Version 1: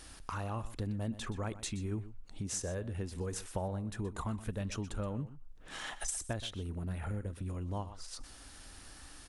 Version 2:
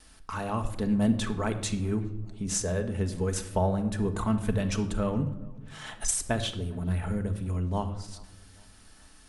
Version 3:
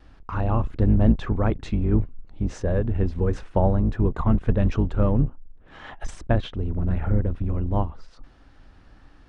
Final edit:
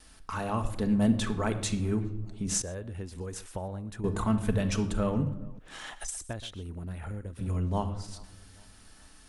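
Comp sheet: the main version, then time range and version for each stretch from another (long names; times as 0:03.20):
2
0:02.62–0:04.04: punch in from 1
0:05.59–0:07.39: punch in from 1
not used: 3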